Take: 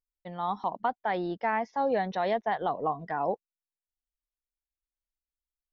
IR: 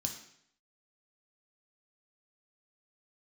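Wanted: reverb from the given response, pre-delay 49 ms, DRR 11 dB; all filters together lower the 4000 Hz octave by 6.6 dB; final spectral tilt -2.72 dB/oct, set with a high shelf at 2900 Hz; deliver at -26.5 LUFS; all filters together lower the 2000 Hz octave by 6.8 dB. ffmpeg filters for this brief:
-filter_complex "[0:a]equalizer=f=2k:t=o:g=-8.5,highshelf=f=2.9k:g=4.5,equalizer=f=4k:t=o:g=-8.5,asplit=2[a][b];[1:a]atrim=start_sample=2205,adelay=49[c];[b][c]afir=irnorm=-1:irlink=0,volume=-10dB[d];[a][d]amix=inputs=2:normalize=0,volume=4.5dB"

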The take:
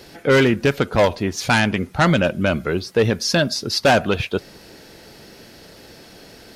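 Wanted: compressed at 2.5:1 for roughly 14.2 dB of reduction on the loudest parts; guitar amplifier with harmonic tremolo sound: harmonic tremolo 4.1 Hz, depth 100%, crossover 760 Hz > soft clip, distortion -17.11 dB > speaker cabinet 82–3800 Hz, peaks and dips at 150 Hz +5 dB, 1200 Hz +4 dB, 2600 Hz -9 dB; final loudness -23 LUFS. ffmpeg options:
-filter_complex "[0:a]acompressor=threshold=-34dB:ratio=2.5,acrossover=split=760[a][b];[a]aeval=exprs='val(0)*(1-1/2+1/2*cos(2*PI*4.1*n/s))':c=same[c];[b]aeval=exprs='val(0)*(1-1/2-1/2*cos(2*PI*4.1*n/s))':c=same[d];[c][d]amix=inputs=2:normalize=0,asoftclip=threshold=-26.5dB,highpass=82,equalizer=f=150:t=q:w=4:g=5,equalizer=f=1.2k:t=q:w=4:g=4,equalizer=f=2.6k:t=q:w=4:g=-9,lowpass=f=3.8k:w=0.5412,lowpass=f=3.8k:w=1.3066,volume=15dB"

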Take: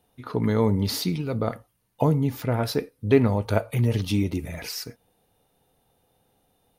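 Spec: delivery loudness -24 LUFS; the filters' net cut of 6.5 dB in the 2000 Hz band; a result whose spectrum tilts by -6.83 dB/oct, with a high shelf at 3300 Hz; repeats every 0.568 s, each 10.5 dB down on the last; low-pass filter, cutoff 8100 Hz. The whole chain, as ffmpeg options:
-af "lowpass=8.1k,equalizer=f=2k:t=o:g=-6.5,highshelf=f=3.3k:g=-6,aecho=1:1:568|1136|1704:0.299|0.0896|0.0269,volume=1dB"

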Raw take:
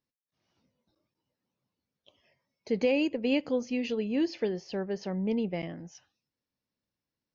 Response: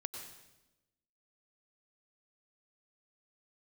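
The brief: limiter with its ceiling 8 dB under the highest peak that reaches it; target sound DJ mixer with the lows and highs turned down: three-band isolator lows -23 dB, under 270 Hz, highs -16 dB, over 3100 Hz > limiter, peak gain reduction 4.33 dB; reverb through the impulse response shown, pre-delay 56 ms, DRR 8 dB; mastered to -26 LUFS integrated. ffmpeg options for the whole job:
-filter_complex "[0:a]alimiter=limit=-23dB:level=0:latency=1,asplit=2[a][b];[1:a]atrim=start_sample=2205,adelay=56[c];[b][c]afir=irnorm=-1:irlink=0,volume=-7dB[d];[a][d]amix=inputs=2:normalize=0,acrossover=split=270 3100:gain=0.0708 1 0.158[e][f][g];[e][f][g]amix=inputs=3:normalize=0,volume=11.5dB,alimiter=limit=-16.5dB:level=0:latency=1"

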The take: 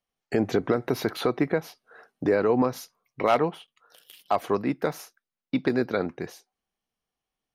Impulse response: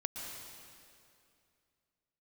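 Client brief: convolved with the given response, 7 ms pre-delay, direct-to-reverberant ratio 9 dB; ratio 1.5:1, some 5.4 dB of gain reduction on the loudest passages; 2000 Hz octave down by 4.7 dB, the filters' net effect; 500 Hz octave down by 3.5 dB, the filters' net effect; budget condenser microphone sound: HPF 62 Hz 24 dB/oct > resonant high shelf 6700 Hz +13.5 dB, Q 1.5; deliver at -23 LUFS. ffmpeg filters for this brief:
-filter_complex "[0:a]equalizer=f=500:t=o:g=-4,equalizer=f=2k:t=o:g=-5,acompressor=threshold=-35dB:ratio=1.5,asplit=2[a][b];[1:a]atrim=start_sample=2205,adelay=7[c];[b][c]afir=irnorm=-1:irlink=0,volume=-10dB[d];[a][d]amix=inputs=2:normalize=0,highpass=f=62:w=0.5412,highpass=f=62:w=1.3066,highshelf=f=6.7k:t=q:w=1.5:g=13.5,volume=10dB"

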